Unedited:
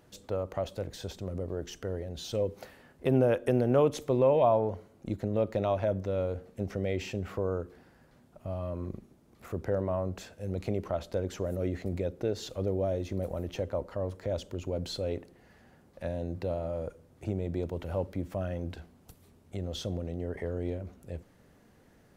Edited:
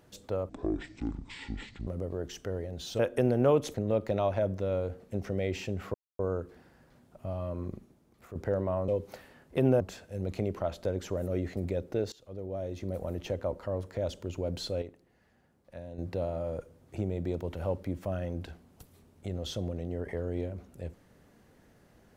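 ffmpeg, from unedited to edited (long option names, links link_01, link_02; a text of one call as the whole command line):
ffmpeg -i in.wav -filter_complex "[0:a]asplit=12[link_01][link_02][link_03][link_04][link_05][link_06][link_07][link_08][link_09][link_10][link_11][link_12];[link_01]atrim=end=0.494[link_13];[link_02]atrim=start=0.49:end=1.25,asetpts=PTS-STARTPTS,asetrate=24255,aresample=44100,atrim=end_sample=60938,asetpts=PTS-STARTPTS[link_14];[link_03]atrim=start=1.246:end=2.372[link_15];[link_04]atrim=start=3.288:end=4.042[link_16];[link_05]atrim=start=5.198:end=7.4,asetpts=PTS-STARTPTS,afade=type=out:start_time=2.198:duration=0.004:curve=hsin,apad=pad_dur=0.25[link_17];[link_06]atrim=start=7.4:end=9.56,asetpts=PTS-STARTPTS,afade=type=in:duration=0.004:curve=hsin,afade=type=out:start_time=1.54:duration=0.62:silence=0.354813[link_18];[link_07]atrim=start=9.56:end=10.092,asetpts=PTS-STARTPTS,afade=type=in:duration=0.004:curve=hsin:silence=0.354813[link_19];[link_08]atrim=start=2.368:end=3.292[link_20];[link_09]atrim=start=10.088:end=12.41,asetpts=PTS-STARTPTS,afade=type=out:start_time=2.318:duration=0.004:curve=hsin:silence=0.0891251[link_21];[link_10]atrim=start=12.41:end=15.112,asetpts=PTS-STARTPTS,afade=type=in:duration=1.02:silence=0.0891251[link_22];[link_11]atrim=start=15.108:end=16.272,asetpts=PTS-STARTPTS,volume=-9dB[link_23];[link_12]atrim=start=16.268[link_24];[link_13][link_14]acrossfade=duration=0.004:curve1=hsin:curve2=hsin[link_25];[link_25][link_15]acrossfade=duration=0.004:curve1=hsin:curve2=hsin[link_26];[link_26][link_16]acrossfade=duration=0.004:curve1=hsin:curve2=hsin[link_27];[link_17][link_18][link_19]concat=n=3:v=0:a=1[link_28];[link_27][link_28]acrossfade=duration=0.004:curve1=hsin:curve2=hsin[link_29];[link_29][link_20]acrossfade=duration=0.004:curve1=hsin:curve2=hsin[link_30];[link_21][link_22]concat=n=2:v=0:a=1[link_31];[link_30][link_31]acrossfade=duration=0.004:curve1=hsin:curve2=hsin[link_32];[link_32][link_23]acrossfade=duration=0.004:curve1=hsin:curve2=hsin[link_33];[link_33][link_24]acrossfade=duration=0.004:curve1=hsin:curve2=hsin" out.wav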